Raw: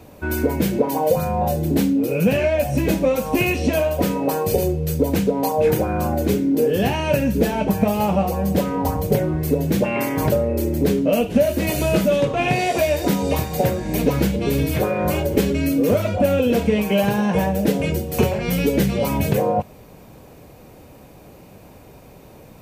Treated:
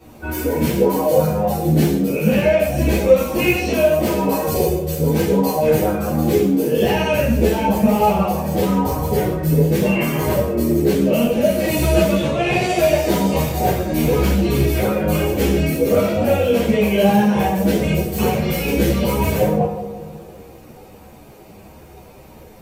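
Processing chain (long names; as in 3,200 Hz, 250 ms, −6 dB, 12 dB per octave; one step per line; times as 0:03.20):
feedback echo with a low-pass in the loop 83 ms, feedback 79%, low-pass 2,000 Hz, level −12 dB
reverb whose tail is shaped and stops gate 210 ms falling, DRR −7.5 dB
string-ensemble chorus
level −2.5 dB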